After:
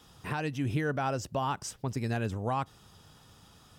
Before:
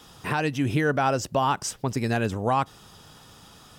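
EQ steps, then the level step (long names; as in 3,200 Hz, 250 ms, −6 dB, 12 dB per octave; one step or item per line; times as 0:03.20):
parametric band 75 Hz +6 dB 2.1 octaves
−8.5 dB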